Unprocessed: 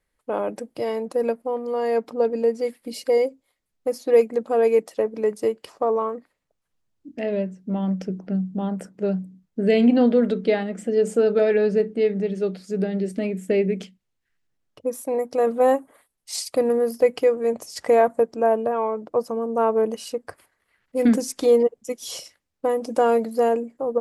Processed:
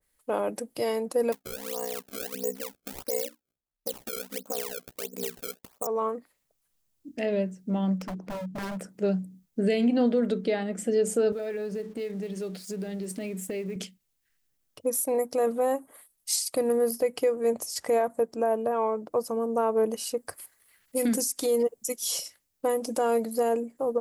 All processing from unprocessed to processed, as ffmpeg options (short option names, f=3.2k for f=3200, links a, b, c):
-filter_complex "[0:a]asettb=1/sr,asplit=3[a][b][c];[a]atrim=end=1.324[d];[b]atrim=start=1.32:end=5.87,asetpts=PTS-STARTPTS,afade=t=in:d=0.004:c=qsin,afade=t=out:st=4.546:d=0.004:c=qsin,agate=range=-11dB:threshold=-44dB:ratio=16:release=100:detection=peak,acrusher=samples=27:mix=1:aa=0.000001:lfo=1:lforange=43.2:lforate=1.5,aeval=exprs='val(0)*sin(2*PI*31*n/s)':c=same[e];[c]atrim=start=5.866[f];[d][e]acrossfade=d=0.004:c1=hsin:c2=qsin[g];[g][f]acrossfade=d=0.004:c1=qsin:c2=hsin,asettb=1/sr,asplit=3[h][i][j];[h]atrim=end=7.984[k];[i]atrim=start=7.98:end=8.89,asetpts=PTS-STARTPTS,afade=t=in:d=0.004:c=qsin,afade=t=out:st=0.906:d=0.004:c=qsin,lowpass=f=3.5k:p=1,aeval=exprs='0.0447*(abs(mod(val(0)/0.0447+3,4)-2)-1)':c=same[l];[j]atrim=start=8.886[m];[k][l]acrossfade=d=0.004:c1=hsin:c2=qsin[n];[n][m]acrossfade=d=0.004:c1=qsin:c2=hsin,asettb=1/sr,asplit=3[o][p][q];[o]atrim=end=11.324[r];[p]atrim=start=11.32:end=13.76,asetpts=PTS-STARTPTS,afade=t=in:d=0.004:c=qsin,afade=t=out:st=2.436:d=0.004:c=qsin,highpass=f=85:w=0.5412,highpass=f=85:w=1.3066,acompressor=threshold=-28dB:ratio=5:attack=3.2:release=140:knee=1:detection=peak,aeval=exprs='sgn(val(0))*max(abs(val(0))-0.00141,0)':c=same[s];[q]atrim=start=13.756[t];[r][s]acrossfade=d=0.004:c1=hsin:c2=qsin[u];[u][t]acrossfade=d=0.004:c1=qsin:c2=hsin,asettb=1/sr,asplit=3[v][w][x];[v]atrim=end=20.174[y];[w]atrim=start=20.17:end=21.96,asetpts=PTS-STARTPTS,afade=t=in:d=0.004:c=qsin,afade=t=out:st=1.786:d=0.004:c=qsin,highshelf=f=4.8k:g=8,acompressor=threshold=-17dB:ratio=4:attack=3.2:release=140:knee=1:detection=peak[z];[x]atrim=start=21.956[aa];[y][z]acrossfade=d=0.004:c1=hsin:c2=qsin[ab];[ab][aa]acrossfade=d=0.004:c1=qsin:c2=hsin,aemphasis=mode=production:type=75kf,alimiter=limit=-13.5dB:level=0:latency=1:release=208,adynamicequalizer=threshold=0.01:dfrequency=1700:dqfactor=0.7:tfrequency=1700:tqfactor=0.7:attack=5:release=100:ratio=0.375:range=2.5:mode=cutabove:tftype=highshelf,volume=-2.5dB"